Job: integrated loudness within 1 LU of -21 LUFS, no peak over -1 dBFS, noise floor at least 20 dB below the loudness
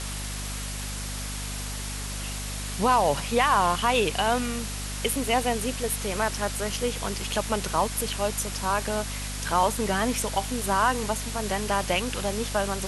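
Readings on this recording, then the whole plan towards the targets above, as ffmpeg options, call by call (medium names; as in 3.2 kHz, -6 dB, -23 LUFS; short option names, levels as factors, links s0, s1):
hum 50 Hz; highest harmonic 250 Hz; hum level -32 dBFS; noise floor -33 dBFS; noise floor target -47 dBFS; loudness -26.5 LUFS; peak level -9.0 dBFS; loudness target -21.0 LUFS
-> -af "bandreject=f=50:t=h:w=6,bandreject=f=100:t=h:w=6,bandreject=f=150:t=h:w=6,bandreject=f=200:t=h:w=6,bandreject=f=250:t=h:w=6"
-af "afftdn=nr=14:nf=-33"
-af "volume=1.88"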